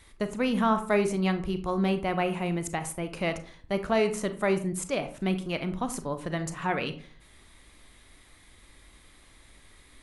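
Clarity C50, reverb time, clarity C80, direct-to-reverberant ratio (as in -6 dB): 12.5 dB, 0.45 s, 17.0 dB, 9.0 dB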